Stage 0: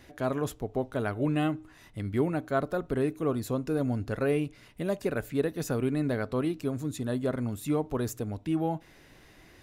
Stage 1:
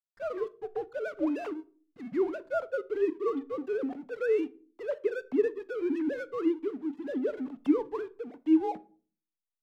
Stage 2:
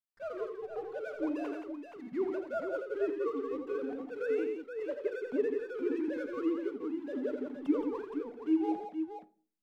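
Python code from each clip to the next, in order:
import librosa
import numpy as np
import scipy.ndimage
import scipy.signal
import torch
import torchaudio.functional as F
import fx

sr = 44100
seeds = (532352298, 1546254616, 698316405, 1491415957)

y1 = fx.sine_speech(x, sr)
y1 = fx.backlash(y1, sr, play_db=-41.0)
y1 = fx.room_shoebox(y1, sr, seeds[0], volume_m3=320.0, walls='furnished', distance_m=0.33)
y1 = y1 * 10.0 ** (-1.5 / 20.0)
y2 = fx.echo_multitap(y1, sr, ms=(84, 171, 471), db=(-7.0, -6.0, -7.5))
y2 = y2 * 10.0 ** (-5.5 / 20.0)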